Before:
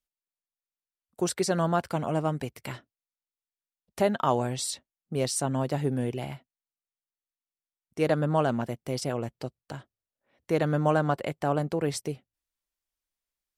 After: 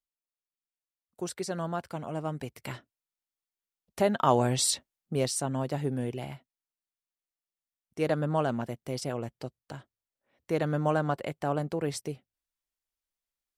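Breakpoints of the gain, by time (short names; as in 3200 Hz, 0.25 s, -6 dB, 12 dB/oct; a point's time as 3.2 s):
2.11 s -7.5 dB
2.71 s -1 dB
4.05 s -1 dB
4.7 s +6 dB
5.44 s -3 dB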